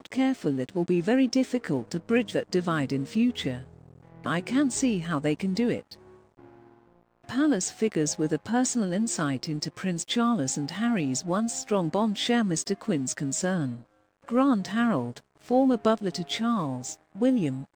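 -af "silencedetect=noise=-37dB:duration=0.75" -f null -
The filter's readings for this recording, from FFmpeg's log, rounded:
silence_start: 5.94
silence_end: 7.29 | silence_duration: 1.35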